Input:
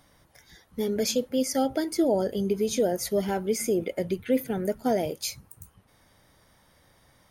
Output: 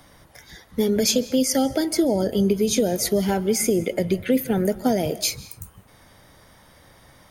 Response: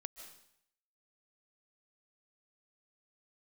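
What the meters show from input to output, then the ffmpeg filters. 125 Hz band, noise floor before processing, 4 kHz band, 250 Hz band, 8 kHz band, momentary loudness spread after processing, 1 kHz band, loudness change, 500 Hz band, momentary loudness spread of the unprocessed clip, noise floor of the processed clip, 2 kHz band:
+8.0 dB, -62 dBFS, +8.0 dB, +6.5 dB, +8.0 dB, 5 LU, +2.5 dB, +5.5 dB, +3.5 dB, 6 LU, -53 dBFS, +6.0 dB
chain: -filter_complex "[0:a]acrossover=split=230|3000[a][b][c];[b]acompressor=threshold=-30dB:ratio=6[d];[a][d][c]amix=inputs=3:normalize=0,asplit=2[e][f];[f]bass=f=250:g=-1,treble=f=4k:g=-5[g];[1:a]atrim=start_sample=2205,afade=t=out:st=0.32:d=0.01,atrim=end_sample=14553[h];[g][h]afir=irnorm=-1:irlink=0,volume=-1.5dB[i];[e][i]amix=inputs=2:normalize=0,volume=6dB"

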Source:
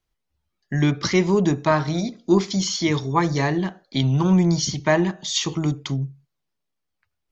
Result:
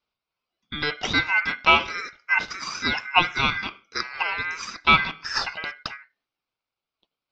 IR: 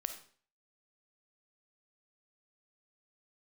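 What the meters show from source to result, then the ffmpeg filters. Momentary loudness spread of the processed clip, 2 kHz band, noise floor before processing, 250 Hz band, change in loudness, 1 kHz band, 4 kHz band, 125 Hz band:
14 LU, +8.5 dB, -79 dBFS, -16.0 dB, -1.5 dB, +2.5 dB, +2.0 dB, -17.5 dB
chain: -af "highpass=f=440:t=q:w=0.5412,highpass=f=440:t=q:w=1.307,lowpass=f=3.6k:t=q:w=0.5176,lowpass=f=3.6k:t=q:w=0.7071,lowpass=f=3.6k:t=q:w=1.932,afreqshift=-120,aeval=exprs='val(0)*sin(2*PI*1800*n/s)':c=same,volume=6dB"

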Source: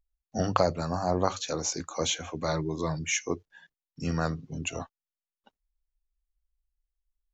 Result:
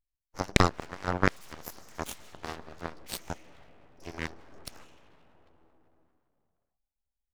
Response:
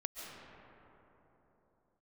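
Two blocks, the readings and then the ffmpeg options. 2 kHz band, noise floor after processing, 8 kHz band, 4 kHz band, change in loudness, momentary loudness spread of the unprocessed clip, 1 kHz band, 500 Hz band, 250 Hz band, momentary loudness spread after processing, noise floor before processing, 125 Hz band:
+2.0 dB, under -85 dBFS, n/a, -4.5 dB, -2.5 dB, 10 LU, -2.5 dB, -6.5 dB, -3.5 dB, 21 LU, under -85 dBFS, -3.0 dB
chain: -filter_complex "[0:a]asplit=2[a][b];[1:a]atrim=start_sample=2205[c];[b][c]afir=irnorm=-1:irlink=0,volume=-6.5dB[d];[a][d]amix=inputs=2:normalize=0,aeval=exprs='abs(val(0))':c=same,aeval=exprs='0.75*(cos(1*acos(clip(val(0)/0.75,-1,1)))-cos(1*PI/2))+0.0596*(cos(5*acos(clip(val(0)/0.75,-1,1)))-cos(5*PI/2))+0.0944*(cos(6*acos(clip(val(0)/0.75,-1,1)))-cos(6*PI/2))+0.188*(cos(7*acos(clip(val(0)/0.75,-1,1)))-cos(7*PI/2))':c=same,volume=-1.5dB"

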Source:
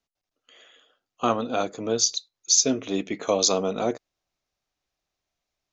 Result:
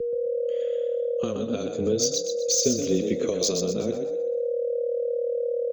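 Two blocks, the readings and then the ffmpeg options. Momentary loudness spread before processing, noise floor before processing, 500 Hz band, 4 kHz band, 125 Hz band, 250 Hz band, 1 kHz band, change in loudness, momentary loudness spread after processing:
10 LU, under -85 dBFS, +5.5 dB, -3.0 dB, +4.0 dB, +1.0 dB, -15.0 dB, -2.0 dB, 6 LU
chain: -filter_complex "[0:a]aeval=exprs='val(0)+0.02*sin(2*PI*490*n/s)':c=same,equalizer=f=340:w=1.8:g=-12,acrossover=split=3900[a][b];[a]acompressor=threshold=-36dB:ratio=6[c];[b]asoftclip=type=tanh:threshold=-19dB[d];[c][d]amix=inputs=2:normalize=0,afreqshift=-14,lowshelf=f=570:t=q:w=3:g=12.5,asplit=2[e][f];[f]asplit=5[g][h][i][j][k];[g]adelay=124,afreqshift=37,volume=-6dB[l];[h]adelay=248,afreqshift=74,volume=-13.7dB[m];[i]adelay=372,afreqshift=111,volume=-21.5dB[n];[j]adelay=496,afreqshift=148,volume=-29.2dB[o];[k]adelay=620,afreqshift=185,volume=-37dB[p];[l][m][n][o][p]amix=inputs=5:normalize=0[q];[e][q]amix=inputs=2:normalize=0"

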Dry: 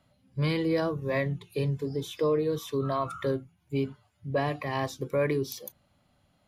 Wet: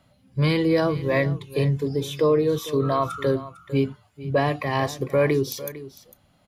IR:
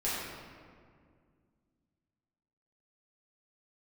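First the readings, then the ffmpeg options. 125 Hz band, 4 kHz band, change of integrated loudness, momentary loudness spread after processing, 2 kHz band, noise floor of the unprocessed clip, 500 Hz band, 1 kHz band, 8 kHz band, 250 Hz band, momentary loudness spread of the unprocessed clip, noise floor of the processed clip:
+7.0 dB, +6.5 dB, +6.5 dB, 10 LU, +6.5 dB, -69 dBFS, +6.5 dB, +6.5 dB, +6.5 dB, +6.5 dB, 9 LU, -61 dBFS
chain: -af "aecho=1:1:452:0.158,volume=6.5dB"

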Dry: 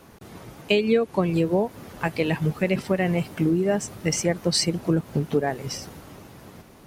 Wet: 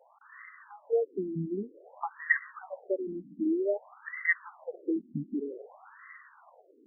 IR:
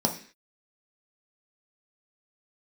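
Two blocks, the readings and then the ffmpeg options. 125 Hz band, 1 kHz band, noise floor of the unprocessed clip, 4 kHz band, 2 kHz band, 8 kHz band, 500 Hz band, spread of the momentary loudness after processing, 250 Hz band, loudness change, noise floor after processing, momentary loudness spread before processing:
-18.5 dB, -10.5 dB, -50 dBFS, under -40 dB, 0.0 dB, under -40 dB, -9.0 dB, 21 LU, -10.5 dB, -8.5 dB, -61 dBFS, 12 LU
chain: -af "lowpass=f=2k:t=q:w=8.9,afftfilt=real='re*between(b*sr/1024,240*pow(1500/240,0.5+0.5*sin(2*PI*0.53*pts/sr))/1.41,240*pow(1500/240,0.5+0.5*sin(2*PI*0.53*pts/sr))*1.41)':imag='im*between(b*sr/1024,240*pow(1500/240,0.5+0.5*sin(2*PI*0.53*pts/sr))/1.41,240*pow(1500/240,0.5+0.5*sin(2*PI*0.53*pts/sr))*1.41)':win_size=1024:overlap=0.75,volume=-5.5dB"

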